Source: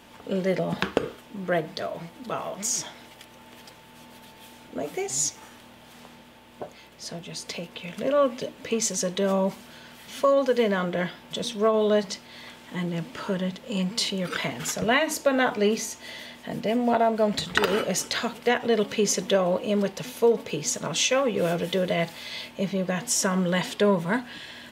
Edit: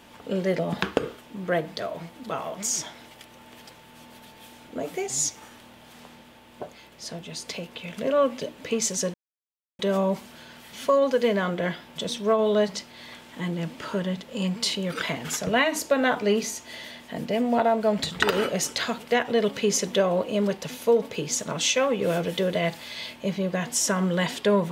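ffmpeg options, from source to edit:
ffmpeg -i in.wav -filter_complex "[0:a]asplit=2[link_01][link_02];[link_01]atrim=end=9.14,asetpts=PTS-STARTPTS,afade=type=out:start_time=9.136:duration=0.004:curve=hsin,apad=pad_dur=0.65[link_03];[link_02]atrim=start=9.14,asetpts=PTS-STARTPTS,afade=type=in:duration=0.004:curve=hsin[link_04];[link_03][link_04]concat=n=2:v=0:a=1" out.wav

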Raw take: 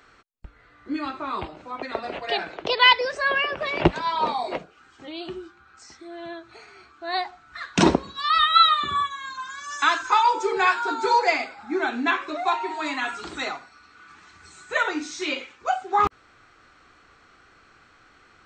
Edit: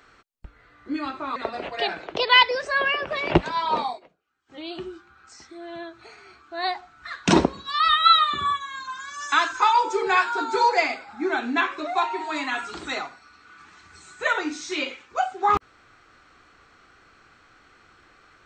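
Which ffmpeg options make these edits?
ffmpeg -i in.wav -filter_complex "[0:a]asplit=4[link_01][link_02][link_03][link_04];[link_01]atrim=end=1.362[link_05];[link_02]atrim=start=1.858:end=4.5,asetpts=PTS-STARTPTS,afade=type=out:start_time=2.502:duration=0.14:silence=0.0630957[link_06];[link_03]atrim=start=4.5:end=4.96,asetpts=PTS-STARTPTS,volume=-24dB[link_07];[link_04]atrim=start=4.96,asetpts=PTS-STARTPTS,afade=type=in:duration=0.14:silence=0.0630957[link_08];[link_06][link_07][link_08]concat=n=3:v=0:a=1[link_09];[link_05][link_09]acrossfade=duration=0.004:curve1=hsin:curve2=hsin" out.wav

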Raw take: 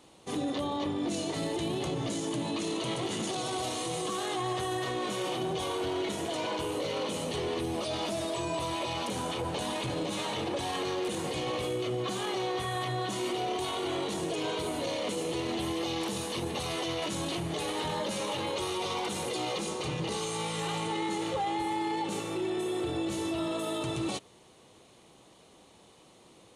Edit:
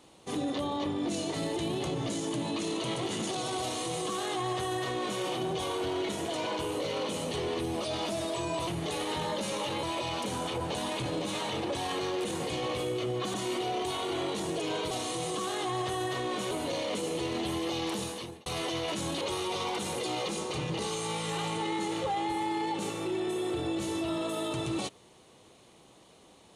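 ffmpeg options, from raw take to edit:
ffmpeg -i in.wav -filter_complex "[0:a]asplit=8[link_01][link_02][link_03][link_04][link_05][link_06][link_07][link_08];[link_01]atrim=end=8.672[link_09];[link_02]atrim=start=17.348:end=18.512[link_10];[link_03]atrim=start=8.668:end=12.182[link_11];[link_04]atrim=start=13.078:end=14.652[link_12];[link_05]atrim=start=3.618:end=5.222[link_13];[link_06]atrim=start=14.648:end=16.6,asetpts=PTS-STARTPTS,afade=type=out:start_time=1.492:duration=0.46[link_14];[link_07]atrim=start=16.6:end=17.352,asetpts=PTS-STARTPTS,afade=type=in:duration=0.004:curve=hsin[link_15];[link_08]atrim=start=18.508[link_16];[link_09][link_10]acrossfade=duration=0.004:curve1=hsin:curve2=hsin[link_17];[link_17][link_11]acrossfade=duration=0.004:curve1=hsin:curve2=hsin[link_18];[link_18][link_12]acrossfade=duration=0.004:curve1=hsin:curve2=hsin[link_19];[link_19][link_13]acrossfade=duration=0.004:curve1=hsin:curve2=hsin[link_20];[link_14][link_15]concat=n=2:v=0:a=1[link_21];[link_20][link_21]acrossfade=duration=0.004:curve1=hsin:curve2=hsin[link_22];[link_22][link_16]acrossfade=duration=0.004:curve1=hsin:curve2=hsin" out.wav

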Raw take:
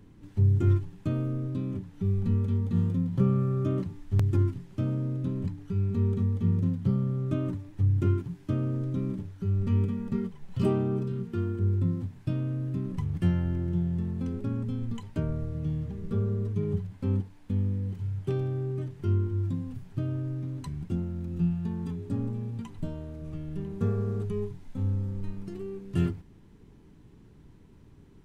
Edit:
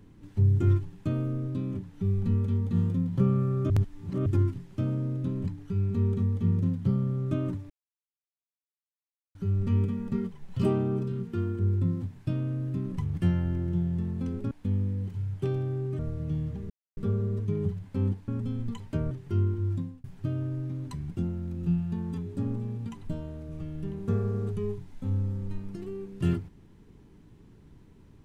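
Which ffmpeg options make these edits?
ffmpeg -i in.wav -filter_complex "[0:a]asplit=11[link_01][link_02][link_03][link_04][link_05][link_06][link_07][link_08][link_09][link_10][link_11];[link_01]atrim=end=3.702[link_12];[link_02]atrim=start=3.698:end=4.262,asetpts=PTS-STARTPTS,areverse[link_13];[link_03]atrim=start=4.258:end=7.7,asetpts=PTS-STARTPTS,afade=type=out:start_time=3.438:duration=0.004:curve=hsin[link_14];[link_04]atrim=start=7.7:end=9.35,asetpts=PTS-STARTPTS,volume=0[link_15];[link_05]atrim=start=9.35:end=14.512,asetpts=PTS-STARTPTS,afade=type=in:duration=0.004:curve=hsin[link_16];[link_06]atrim=start=17.358:end=18.842[link_17];[link_07]atrim=start=15.338:end=16.05,asetpts=PTS-STARTPTS,afade=type=out:start_time=0.708:duration=0.004:curve=hsin,apad=pad_dur=0.27[link_18];[link_08]atrim=start=16.05:end=17.362,asetpts=PTS-STARTPTS,afade=type=in:duration=0.004:curve=hsin[link_19];[link_09]atrim=start=14.508:end=15.342[link_20];[link_10]atrim=start=18.838:end=19.77,asetpts=PTS-STARTPTS,afade=type=out:start_time=0.652:duration=0.28[link_21];[link_11]atrim=start=19.77,asetpts=PTS-STARTPTS,afade=type=in:duration=0.004:curve=hsin[link_22];[link_12][link_13]acrossfade=duration=0.004:curve1=hsin:curve2=hsin[link_23];[link_14][link_15][link_16]concat=n=3:v=0:a=1[link_24];[link_23][link_24]acrossfade=duration=0.004:curve1=hsin:curve2=hsin[link_25];[link_25][link_17]acrossfade=duration=0.004:curve1=hsin:curve2=hsin[link_26];[link_18][link_19]concat=n=2:v=0:a=1[link_27];[link_26][link_27]acrossfade=duration=0.004:curve1=hsin:curve2=hsin[link_28];[link_28][link_20]acrossfade=duration=0.004:curve1=hsin:curve2=hsin[link_29];[link_21][link_22]concat=n=2:v=0:a=1[link_30];[link_29][link_30]acrossfade=duration=0.004:curve1=hsin:curve2=hsin" out.wav

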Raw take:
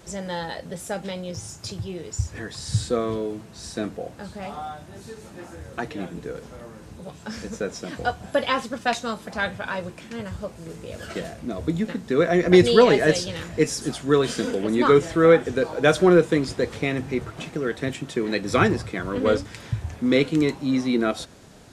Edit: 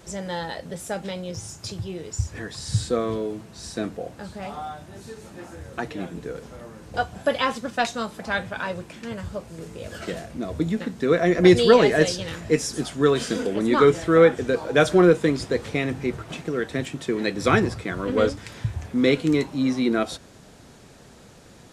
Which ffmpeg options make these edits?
ffmpeg -i in.wav -filter_complex "[0:a]asplit=2[link_01][link_02];[link_01]atrim=end=6.942[link_03];[link_02]atrim=start=8.018[link_04];[link_03][link_04]acrossfade=duration=0.004:curve1=hsin:curve2=hsin" out.wav

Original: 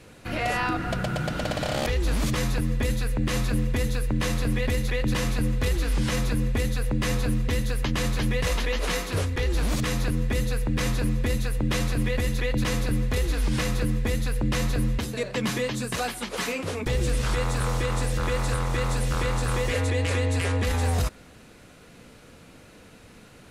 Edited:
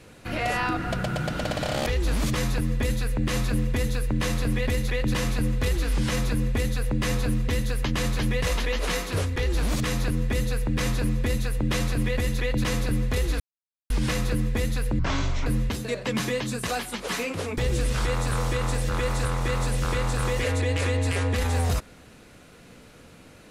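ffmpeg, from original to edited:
ffmpeg -i in.wav -filter_complex "[0:a]asplit=4[link_01][link_02][link_03][link_04];[link_01]atrim=end=13.4,asetpts=PTS-STARTPTS,afade=type=out:start_time=13.396:duration=0.004:curve=hsin,apad=pad_dur=0.5[link_05];[link_02]atrim=start=13.4:end=14.494,asetpts=PTS-STARTPTS,afade=type=in:duration=0.004:curve=hsin[link_06];[link_03]atrim=start=14.49:end=14.75,asetpts=PTS-STARTPTS,asetrate=24255,aresample=44100,atrim=end_sample=20847,asetpts=PTS-STARTPTS[link_07];[link_04]atrim=start=14.746[link_08];[link_05][link_06]concat=n=2:v=0:a=1[link_09];[link_09][link_07]acrossfade=duration=0.004:curve1=hsin:curve2=hsin[link_10];[link_10][link_08]acrossfade=duration=0.004:curve1=hsin:curve2=hsin" out.wav

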